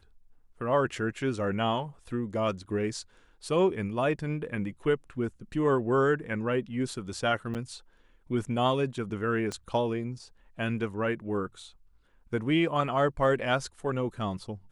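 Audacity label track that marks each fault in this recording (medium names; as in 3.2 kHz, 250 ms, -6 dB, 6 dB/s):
7.540000	7.550000	dropout 8.2 ms
9.520000	9.520000	pop -23 dBFS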